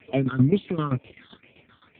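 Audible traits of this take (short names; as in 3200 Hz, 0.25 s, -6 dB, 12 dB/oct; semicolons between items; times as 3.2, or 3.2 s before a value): a quantiser's noise floor 12-bit, dither none; phasing stages 6, 2.1 Hz, lowest notch 600–1400 Hz; tremolo saw down 7.7 Hz, depth 85%; AMR-NB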